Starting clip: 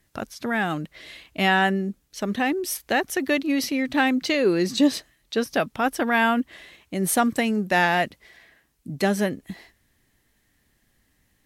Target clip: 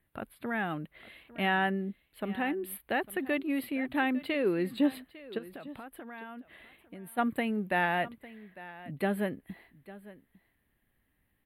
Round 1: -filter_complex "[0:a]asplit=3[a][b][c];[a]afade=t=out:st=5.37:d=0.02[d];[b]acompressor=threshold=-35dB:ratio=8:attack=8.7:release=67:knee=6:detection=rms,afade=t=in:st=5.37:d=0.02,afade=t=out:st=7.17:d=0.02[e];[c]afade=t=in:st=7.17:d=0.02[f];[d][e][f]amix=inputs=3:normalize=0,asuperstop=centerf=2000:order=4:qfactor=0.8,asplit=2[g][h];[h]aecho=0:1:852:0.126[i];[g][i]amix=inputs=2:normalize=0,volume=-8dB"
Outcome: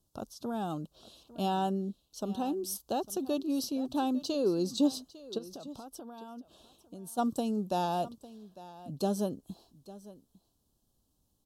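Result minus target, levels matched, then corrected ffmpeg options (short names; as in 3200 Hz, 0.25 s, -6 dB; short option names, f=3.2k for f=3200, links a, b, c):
2000 Hz band -18.0 dB
-filter_complex "[0:a]asplit=3[a][b][c];[a]afade=t=out:st=5.37:d=0.02[d];[b]acompressor=threshold=-35dB:ratio=8:attack=8.7:release=67:knee=6:detection=rms,afade=t=in:st=5.37:d=0.02,afade=t=out:st=7.17:d=0.02[e];[c]afade=t=in:st=7.17:d=0.02[f];[d][e][f]amix=inputs=3:normalize=0,asuperstop=centerf=6000:order=4:qfactor=0.8,asplit=2[g][h];[h]aecho=0:1:852:0.126[i];[g][i]amix=inputs=2:normalize=0,volume=-8dB"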